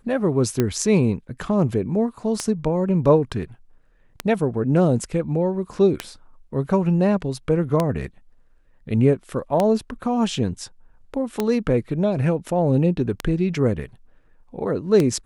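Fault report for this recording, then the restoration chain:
tick 33 1/3 rpm -7 dBFS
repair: de-click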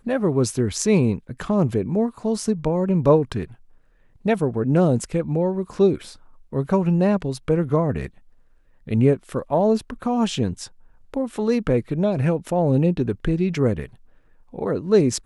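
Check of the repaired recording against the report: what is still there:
none

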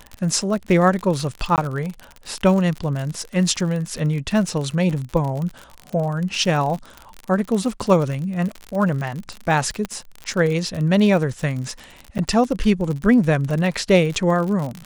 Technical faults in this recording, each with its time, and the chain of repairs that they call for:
crackle 54/s -25 dBFS
1.56–1.58 gap 18 ms
9.85 pop -12 dBFS
12.18–12.19 gap 9 ms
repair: de-click; interpolate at 1.56, 18 ms; interpolate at 12.18, 9 ms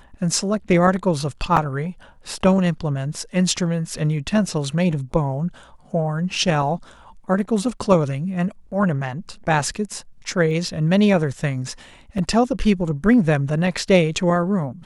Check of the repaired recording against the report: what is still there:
9.85 pop

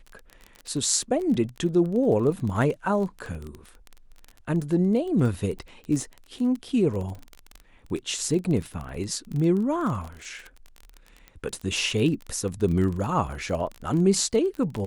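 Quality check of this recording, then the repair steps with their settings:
crackle 21/s -30 dBFS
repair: de-click

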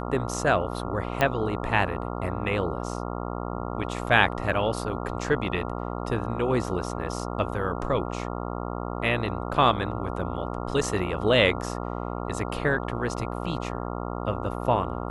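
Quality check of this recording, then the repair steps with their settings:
buzz 60 Hz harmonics 23 -32 dBFS
1.21 pop -10 dBFS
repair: de-click; de-hum 60 Hz, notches 23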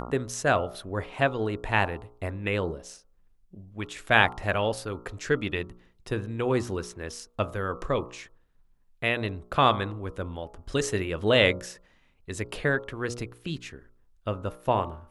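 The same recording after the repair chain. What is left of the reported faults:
none

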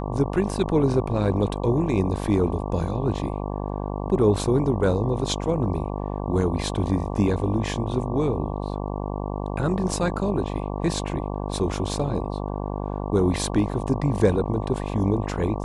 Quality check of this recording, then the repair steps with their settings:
buzz 50 Hz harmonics 23 -29 dBFS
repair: de-hum 50 Hz, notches 23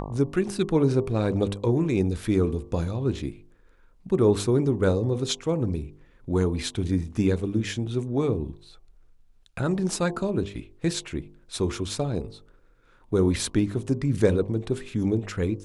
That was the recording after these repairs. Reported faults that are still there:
none

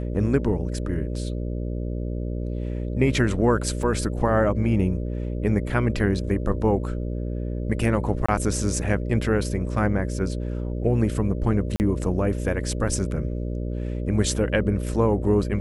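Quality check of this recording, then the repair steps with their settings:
buzz 60 Hz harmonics 10 -28 dBFS
3.83 gap 2.4 ms
8.26–8.29 gap 25 ms
11.76–11.8 gap 39 ms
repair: de-hum 60 Hz, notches 10; interpolate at 3.83, 2.4 ms; interpolate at 8.26, 25 ms; interpolate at 11.76, 39 ms

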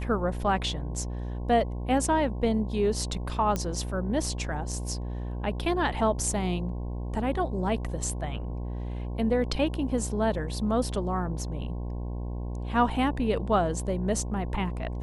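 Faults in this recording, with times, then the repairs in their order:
buzz 60 Hz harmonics 18 -33 dBFS
3.56 pop -15 dBFS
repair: de-click; de-hum 60 Hz, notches 18

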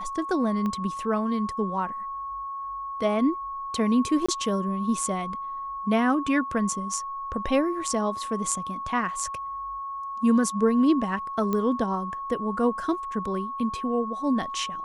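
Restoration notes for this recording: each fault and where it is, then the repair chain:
tone 1100 Hz -31 dBFS
0.66 pop -19 dBFS
4.26–4.29 gap 25 ms
11.53 pop -15 dBFS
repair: de-click; notch 1100 Hz, Q 30; interpolate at 4.26, 25 ms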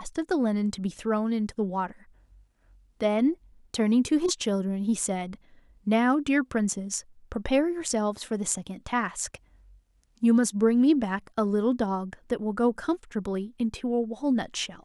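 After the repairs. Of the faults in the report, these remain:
0.66 pop

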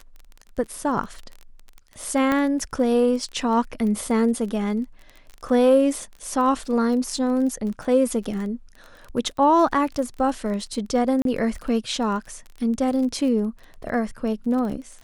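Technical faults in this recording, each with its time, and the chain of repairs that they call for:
crackle 24/s -31 dBFS
2.32 pop -10 dBFS
11.22–11.25 gap 32 ms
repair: de-click; interpolate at 11.22, 32 ms

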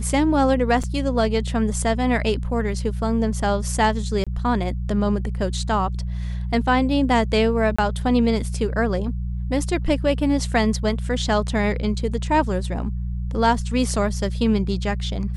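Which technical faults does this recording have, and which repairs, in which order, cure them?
hum 60 Hz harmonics 3 -26 dBFS
0.83–0.84 gap 5.8 ms
4.24–4.27 gap 26 ms
7.76–7.79 gap 25 ms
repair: de-hum 60 Hz, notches 3; interpolate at 0.83, 5.8 ms; interpolate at 4.24, 26 ms; interpolate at 7.76, 25 ms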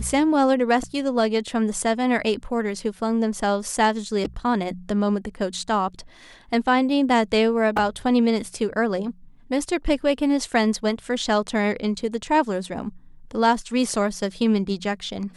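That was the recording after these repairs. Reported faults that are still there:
none

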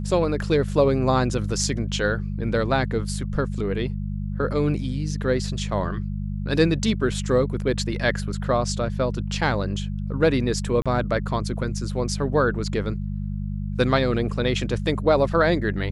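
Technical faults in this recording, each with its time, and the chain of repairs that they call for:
hum 50 Hz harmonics 4 -28 dBFS
10.82–10.86 gap 36 ms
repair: de-hum 50 Hz, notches 4; interpolate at 10.82, 36 ms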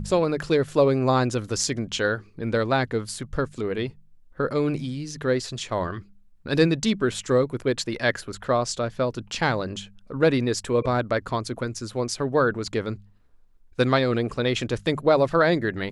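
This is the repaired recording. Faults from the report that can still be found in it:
none

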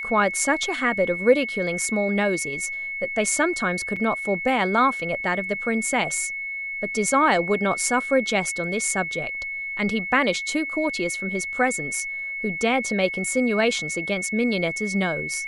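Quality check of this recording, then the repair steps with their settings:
tone 2200 Hz -28 dBFS
3.96–3.97 gap 5.2 ms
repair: notch 2200 Hz, Q 30; interpolate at 3.96, 5.2 ms

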